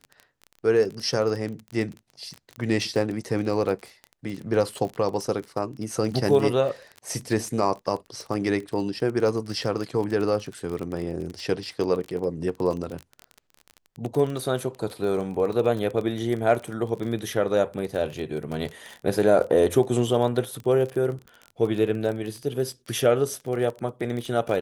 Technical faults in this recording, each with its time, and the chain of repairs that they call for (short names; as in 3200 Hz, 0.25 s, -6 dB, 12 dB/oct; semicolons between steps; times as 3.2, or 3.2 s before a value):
crackle 24/s -29 dBFS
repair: de-click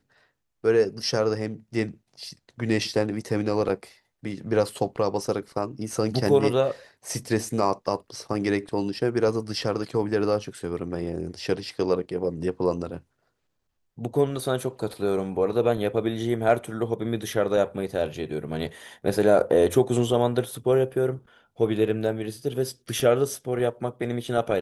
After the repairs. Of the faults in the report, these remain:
none